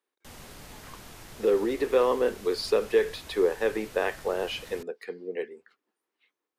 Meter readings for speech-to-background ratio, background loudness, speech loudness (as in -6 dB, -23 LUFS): 18.5 dB, -46.5 LUFS, -28.0 LUFS